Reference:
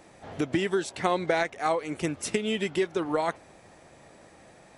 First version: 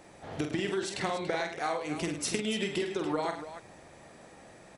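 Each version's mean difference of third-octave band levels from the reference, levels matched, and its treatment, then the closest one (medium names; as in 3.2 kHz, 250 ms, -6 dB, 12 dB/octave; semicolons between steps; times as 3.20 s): 5.0 dB: compression, threshold -28 dBFS, peak gain reduction 8.5 dB; on a send: loudspeakers at several distances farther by 16 m -6 dB, 36 m -11 dB, 98 m -11 dB; on the sum: dynamic bell 4.4 kHz, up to +5 dB, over -56 dBFS, Q 1.5; trim -1 dB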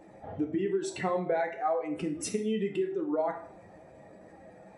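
7.0 dB: spectral contrast enhancement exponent 1.8; in parallel at +2.5 dB: compression, threshold -34 dBFS, peak gain reduction 13 dB; on the sum: plate-style reverb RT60 0.56 s, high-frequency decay 0.75×, DRR 2.5 dB; trim -8 dB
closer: first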